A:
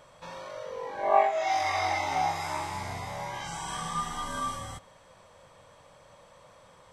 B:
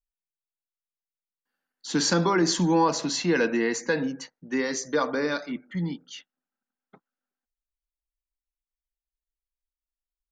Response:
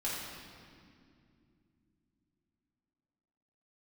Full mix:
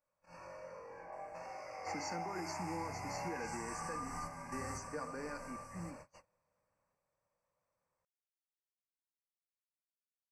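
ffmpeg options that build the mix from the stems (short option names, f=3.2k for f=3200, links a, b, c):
-filter_complex "[0:a]acompressor=threshold=-39dB:ratio=6,volume=0dB,asplit=3[a][b][c];[b]volume=-12.5dB[d];[c]volume=-8.5dB[e];[1:a]volume=-17.5dB,asplit=2[f][g];[g]apad=whole_len=305363[h];[a][h]sidechaingate=range=-33dB:threshold=-57dB:ratio=16:detection=peak[i];[2:a]atrim=start_sample=2205[j];[d][j]afir=irnorm=-1:irlink=0[k];[e]aecho=0:1:1125:1[l];[i][f][k][l]amix=inputs=4:normalize=0,agate=range=-23dB:threshold=-54dB:ratio=16:detection=peak,asuperstop=centerf=3500:order=12:qfactor=2,alimiter=level_in=7.5dB:limit=-24dB:level=0:latency=1:release=386,volume=-7.5dB"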